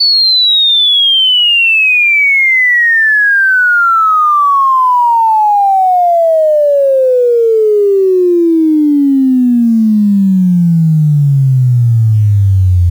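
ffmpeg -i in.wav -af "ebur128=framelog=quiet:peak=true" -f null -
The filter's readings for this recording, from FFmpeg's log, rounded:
Integrated loudness:
  I:          -7.7 LUFS
  Threshold: -17.6 LUFS
Loudness range:
  LRA:         3.5 LU
  Threshold: -27.9 LUFS
  LRA low:    -9.1 LUFS
  LRA high:   -5.6 LUFS
True peak:
  Peak:       -4.6 dBFS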